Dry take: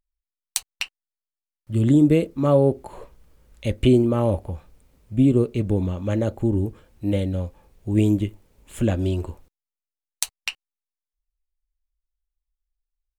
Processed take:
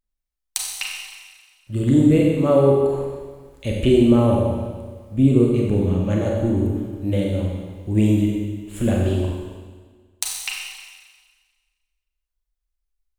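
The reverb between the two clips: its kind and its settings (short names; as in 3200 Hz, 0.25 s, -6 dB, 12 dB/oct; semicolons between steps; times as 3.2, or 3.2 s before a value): Schroeder reverb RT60 1.5 s, combs from 30 ms, DRR -2 dB; gain -1 dB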